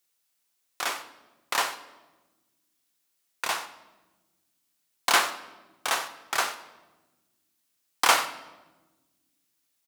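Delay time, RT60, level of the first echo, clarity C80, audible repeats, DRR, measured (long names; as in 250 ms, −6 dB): 91 ms, 1.2 s, −18.5 dB, 14.0 dB, 1, 9.5 dB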